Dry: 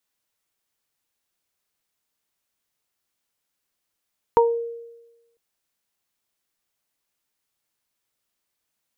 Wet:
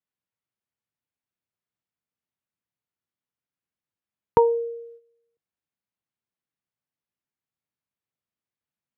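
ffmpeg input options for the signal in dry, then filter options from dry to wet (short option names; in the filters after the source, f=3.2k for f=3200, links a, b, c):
-f lavfi -i "aevalsrc='0.237*pow(10,-3*t/1.09)*sin(2*PI*466*t)+0.299*pow(10,-3*t/0.23)*sin(2*PI*932*t)':d=1:s=44100"
-af "highpass=98,agate=range=-11dB:threshold=-48dB:ratio=16:detection=peak,bass=f=250:g=11,treble=f=4k:g=-13"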